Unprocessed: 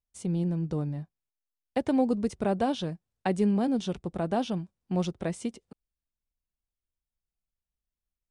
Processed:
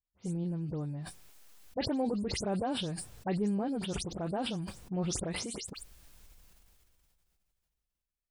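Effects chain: spectral delay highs late, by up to 0.106 s; dynamic EQ 3000 Hz, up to -4 dB, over -49 dBFS, Q 0.99; sustainer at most 20 dB/s; gain -6.5 dB

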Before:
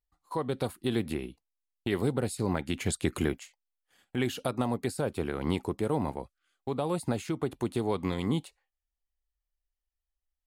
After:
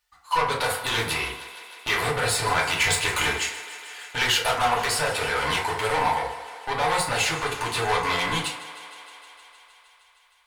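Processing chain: overdrive pedal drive 27 dB, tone 2000 Hz, clips at -13 dBFS; passive tone stack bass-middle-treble 10-0-10; on a send: thinning echo 0.155 s, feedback 80%, high-pass 260 Hz, level -15.5 dB; on the sum: FDN reverb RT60 0.66 s, low-frequency decay 0.85×, high-frequency decay 0.45×, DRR -4.5 dB; gain +6.5 dB

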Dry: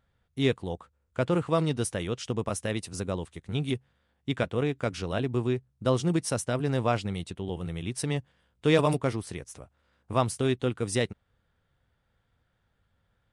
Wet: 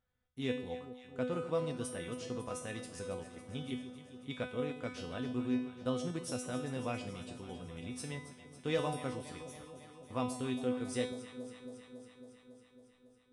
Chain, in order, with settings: resonator 250 Hz, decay 0.56 s, harmonics all, mix 90%; on a send: echo with dull and thin repeats by turns 0.138 s, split 850 Hz, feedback 84%, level -11.5 dB; on the sum: gain +4 dB

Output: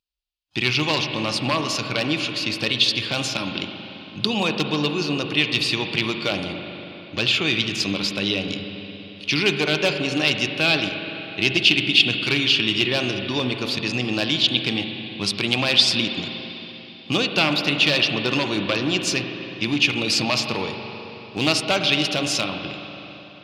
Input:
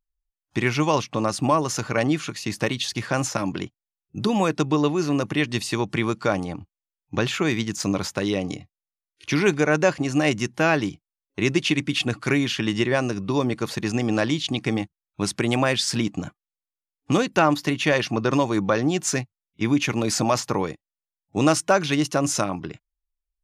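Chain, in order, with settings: one-sided fold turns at -12.5 dBFS; HPF 50 Hz; band shelf 3500 Hz +14 dB 1.3 oct; reverb RT60 3.7 s, pre-delay 40 ms, DRR 5 dB; gain -3.5 dB

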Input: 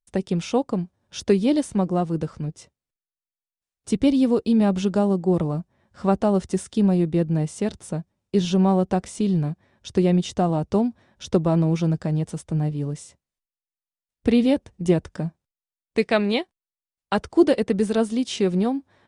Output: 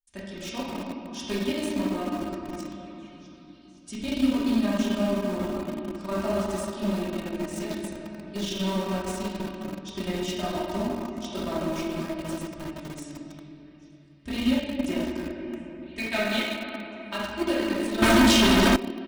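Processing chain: delay with a stepping band-pass 0.515 s, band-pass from 1100 Hz, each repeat 0.7 oct, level -10.5 dB; reverb RT60 3.3 s, pre-delay 5 ms, DRR -9 dB; 18.02–18.76 sample leveller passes 5; passive tone stack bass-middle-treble 5-5-5; in parallel at -7 dB: sample gate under -25 dBFS; on the sum: comb 3.2 ms, depth 84%; maximiser +5.5 dB; gain -8.5 dB

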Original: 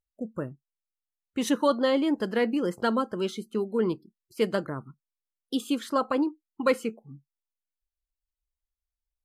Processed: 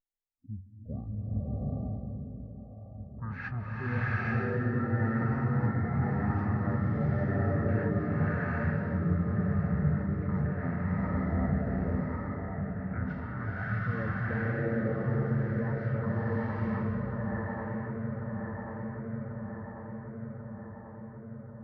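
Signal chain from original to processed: resonant high shelf 5800 Hz -12 dB, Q 3; on a send: echo with dull and thin repeats by turns 0.233 s, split 1200 Hz, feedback 82%, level -7.5 dB; on the sum: limiter -22 dBFS, peak gain reduction 11.5 dB; low-pass opened by the level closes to 2100 Hz, open at -26 dBFS; speed mistake 78 rpm record played at 33 rpm; bloom reverb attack 0.83 s, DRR -9 dB; gain -7.5 dB

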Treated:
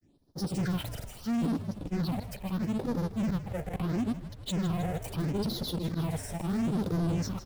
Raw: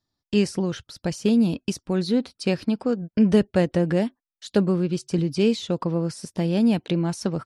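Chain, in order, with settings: half-waves squared off; bell 380 Hz +13 dB 2.5 oct; in parallel at 0 dB: compressor, threshold -24 dBFS, peak gain reduction 22.5 dB; on the sum: auto swell 0.27 s; limiter -16.5 dBFS, peak gain reduction 18.5 dB; grains; phaser stages 6, 0.76 Hz, lowest notch 290–2500 Hz; soft clip -25 dBFS, distortion -11 dB; low shelf 160 Hz +4.5 dB; on a send: frequency-shifting echo 0.158 s, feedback 59%, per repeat -66 Hz, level -12 dB; on the sum: gain -2 dB

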